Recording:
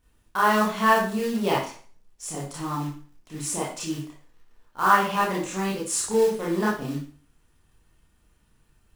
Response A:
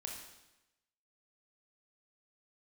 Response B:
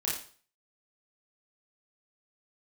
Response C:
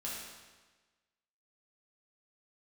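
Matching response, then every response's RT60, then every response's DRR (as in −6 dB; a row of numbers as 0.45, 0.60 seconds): B; 0.95, 0.45, 1.3 seconds; 0.0, −6.5, −6.5 decibels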